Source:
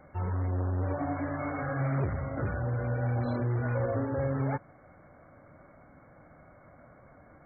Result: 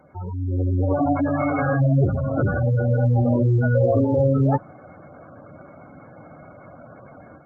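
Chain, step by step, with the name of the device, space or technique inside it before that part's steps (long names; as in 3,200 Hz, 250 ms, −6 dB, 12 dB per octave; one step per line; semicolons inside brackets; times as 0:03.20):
noise-suppressed video call (high-pass filter 100 Hz 12 dB per octave; gate on every frequency bin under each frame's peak −15 dB strong; automatic gain control gain up to 10 dB; level +3 dB; Opus 24 kbit/s 48,000 Hz)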